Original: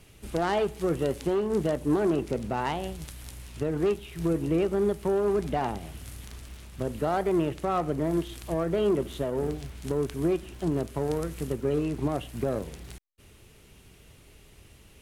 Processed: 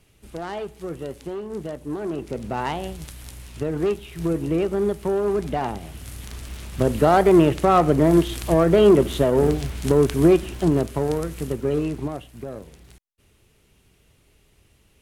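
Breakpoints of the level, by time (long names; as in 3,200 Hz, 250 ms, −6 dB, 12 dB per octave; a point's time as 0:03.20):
0:01.97 −5 dB
0:02.58 +3 dB
0:05.89 +3 dB
0:06.81 +11 dB
0:10.39 +11 dB
0:11.25 +4 dB
0:11.87 +4 dB
0:12.30 −5.5 dB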